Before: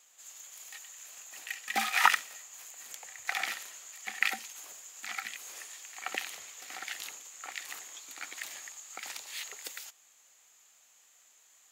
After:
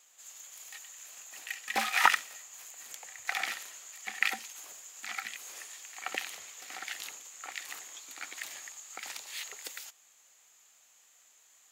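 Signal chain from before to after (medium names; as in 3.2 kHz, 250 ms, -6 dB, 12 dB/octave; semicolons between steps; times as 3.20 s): loudspeaker Doppler distortion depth 0.14 ms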